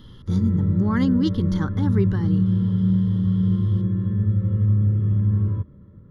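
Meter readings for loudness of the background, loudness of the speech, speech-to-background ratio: -22.0 LUFS, -25.5 LUFS, -3.5 dB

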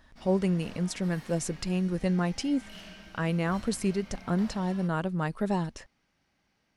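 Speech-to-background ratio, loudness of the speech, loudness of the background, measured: 19.0 dB, -30.0 LUFS, -49.0 LUFS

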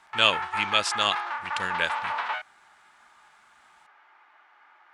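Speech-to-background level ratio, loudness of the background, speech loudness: 5.0 dB, -31.0 LUFS, -26.0 LUFS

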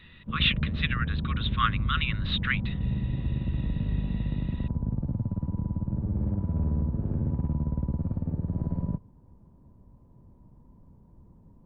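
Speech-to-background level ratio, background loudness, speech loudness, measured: 1.0 dB, -30.5 LUFS, -29.5 LUFS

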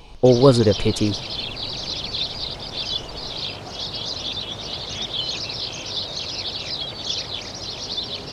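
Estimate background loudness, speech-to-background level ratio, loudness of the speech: -26.5 LUFS, 9.0 dB, -17.5 LUFS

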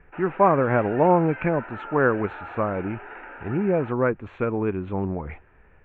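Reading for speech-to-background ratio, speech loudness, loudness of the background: 14.5 dB, -24.0 LUFS, -38.5 LUFS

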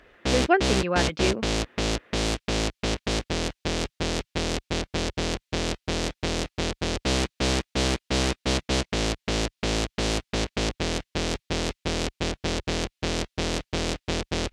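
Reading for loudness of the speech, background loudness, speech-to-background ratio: -26.5 LUFS, -27.5 LUFS, 1.0 dB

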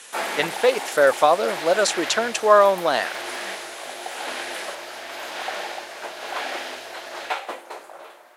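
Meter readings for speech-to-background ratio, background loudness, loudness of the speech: 11.0 dB, -31.0 LUFS, -20.0 LUFS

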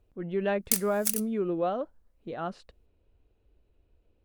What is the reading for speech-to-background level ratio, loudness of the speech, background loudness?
-2.0 dB, -31.5 LUFS, -29.5 LUFS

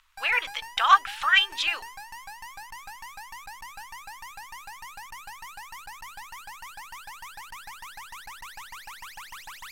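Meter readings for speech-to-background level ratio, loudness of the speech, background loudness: 19.0 dB, -22.5 LUFS, -41.5 LUFS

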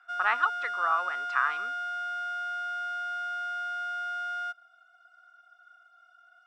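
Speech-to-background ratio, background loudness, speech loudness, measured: 4.0 dB, -33.0 LUFS, -29.0 LUFS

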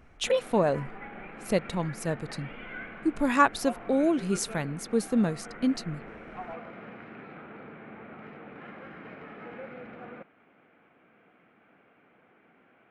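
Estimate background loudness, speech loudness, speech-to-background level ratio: -43.5 LUFS, -28.0 LUFS, 15.5 dB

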